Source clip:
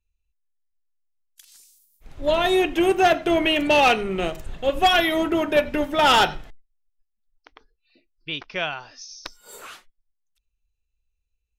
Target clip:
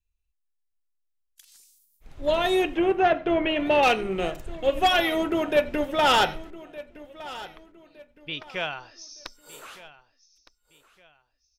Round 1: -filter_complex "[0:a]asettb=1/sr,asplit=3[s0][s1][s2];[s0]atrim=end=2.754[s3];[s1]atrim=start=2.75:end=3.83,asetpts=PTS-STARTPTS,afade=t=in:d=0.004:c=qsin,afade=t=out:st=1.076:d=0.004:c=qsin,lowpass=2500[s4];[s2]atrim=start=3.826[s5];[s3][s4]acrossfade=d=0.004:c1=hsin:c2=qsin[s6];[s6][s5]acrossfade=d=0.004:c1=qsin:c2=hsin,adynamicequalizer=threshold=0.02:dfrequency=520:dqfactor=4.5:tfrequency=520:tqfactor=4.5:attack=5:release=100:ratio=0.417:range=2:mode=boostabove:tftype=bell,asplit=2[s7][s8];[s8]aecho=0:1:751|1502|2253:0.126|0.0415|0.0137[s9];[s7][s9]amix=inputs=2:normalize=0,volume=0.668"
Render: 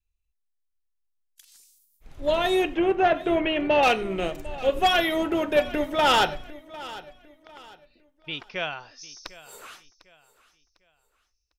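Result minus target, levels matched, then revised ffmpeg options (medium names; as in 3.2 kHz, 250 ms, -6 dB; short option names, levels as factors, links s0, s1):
echo 462 ms early
-filter_complex "[0:a]asettb=1/sr,asplit=3[s0][s1][s2];[s0]atrim=end=2.754[s3];[s1]atrim=start=2.75:end=3.83,asetpts=PTS-STARTPTS,afade=t=in:d=0.004:c=qsin,afade=t=out:st=1.076:d=0.004:c=qsin,lowpass=2500[s4];[s2]atrim=start=3.826[s5];[s3][s4]acrossfade=d=0.004:c1=hsin:c2=qsin[s6];[s6][s5]acrossfade=d=0.004:c1=qsin:c2=hsin,adynamicequalizer=threshold=0.02:dfrequency=520:dqfactor=4.5:tfrequency=520:tqfactor=4.5:attack=5:release=100:ratio=0.417:range=2:mode=boostabove:tftype=bell,asplit=2[s7][s8];[s8]aecho=0:1:1213|2426|3639:0.126|0.0415|0.0137[s9];[s7][s9]amix=inputs=2:normalize=0,volume=0.668"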